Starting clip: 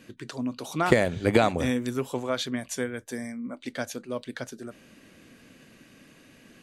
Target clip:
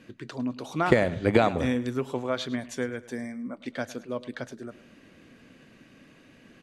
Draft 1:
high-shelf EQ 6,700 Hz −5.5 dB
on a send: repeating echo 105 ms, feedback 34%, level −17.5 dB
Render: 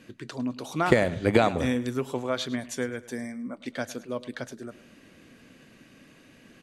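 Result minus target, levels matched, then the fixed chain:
8,000 Hz band +4.5 dB
high-shelf EQ 6,700 Hz −14.5 dB
on a send: repeating echo 105 ms, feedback 34%, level −17.5 dB

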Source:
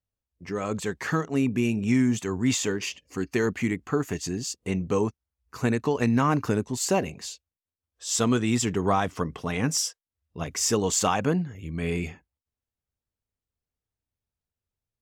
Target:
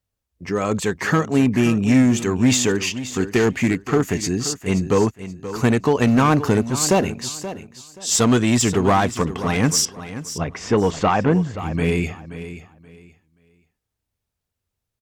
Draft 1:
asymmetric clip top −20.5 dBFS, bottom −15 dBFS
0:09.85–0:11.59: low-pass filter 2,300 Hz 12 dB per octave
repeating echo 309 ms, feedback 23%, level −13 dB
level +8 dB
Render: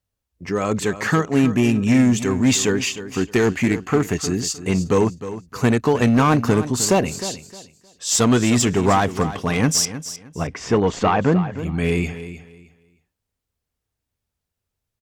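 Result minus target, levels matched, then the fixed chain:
echo 219 ms early
asymmetric clip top −20.5 dBFS, bottom −15 dBFS
0:09.85–0:11.59: low-pass filter 2,300 Hz 12 dB per octave
repeating echo 528 ms, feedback 23%, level −13 dB
level +8 dB

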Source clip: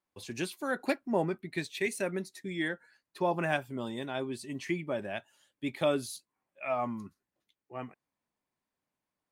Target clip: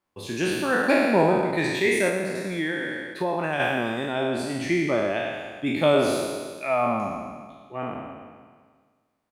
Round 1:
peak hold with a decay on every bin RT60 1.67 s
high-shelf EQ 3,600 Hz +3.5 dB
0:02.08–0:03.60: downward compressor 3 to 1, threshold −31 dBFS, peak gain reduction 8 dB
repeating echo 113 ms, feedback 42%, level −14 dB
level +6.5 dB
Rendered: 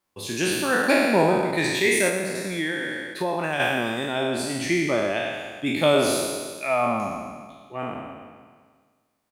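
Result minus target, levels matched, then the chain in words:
8,000 Hz band +7.0 dB
peak hold with a decay on every bin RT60 1.67 s
high-shelf EQ 3,600 Hz −6 dB
0:02.08–0:03.60: downward compressor 3 to 1, threshold −31 dBFS, peak gain reduction 7 dB
repeating echo 113 ms, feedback 42%, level −14 dB
level +6.5 dB

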